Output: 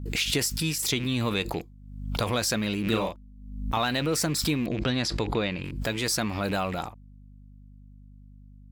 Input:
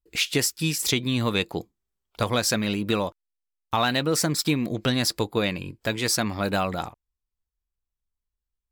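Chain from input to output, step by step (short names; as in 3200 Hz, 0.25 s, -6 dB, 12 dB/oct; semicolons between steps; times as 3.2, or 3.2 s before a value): rattling part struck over -34 dBFS, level -31 dBFS; 4.66–5.64 LPF 5100 Hz 12 dB/oct; in parallel at -1 dB: limiter -22.5 dBFS, peak gain reduction 11.5 dB; on the sum: hum 50 Hz, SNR 20 dB; 2.83–3.78 doubler 36 ms -4 dB; backwards sustainer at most 59 dB/s; gain -6 dB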